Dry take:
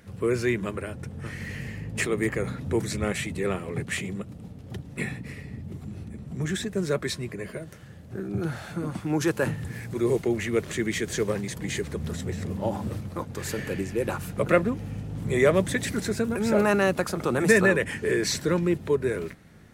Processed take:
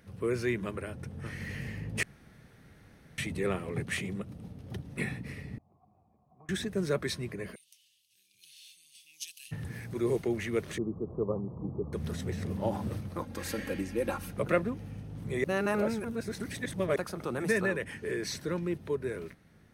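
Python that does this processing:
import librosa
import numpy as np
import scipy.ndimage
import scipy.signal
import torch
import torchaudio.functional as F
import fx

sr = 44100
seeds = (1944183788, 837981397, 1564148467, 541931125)

y = fx.formant_cascade(x, sr, vowel='a', at=(5.58, 6.49))
y = fx.ellip_highpass(y, sr, hz=2800.0, order=4, stop_db=50, at=(7.54, 9.51), fade=0.02)
y = fx.steep_lowpass(y, sr, hz=1200.0, slope=96, at=(10.78, 11.93))
y = fx.comb(y, sr, ms=3.7, depth=0.65, at=(13.23, 14.31))
y = fx.edit(y, sr, fx.room_tone_fill(start_s=2.03, length_s=1.15),
    fx.reverse_span(start_s=15.44, length_s=1.52), tone=tone)
y = fx.notch(y, sr, hz=7300.0, q=5.9)
y = fx.rider(y, sr, range_db=4, speed_s=2.0)
y = y * librosa.db_to_amplitude(-7.0)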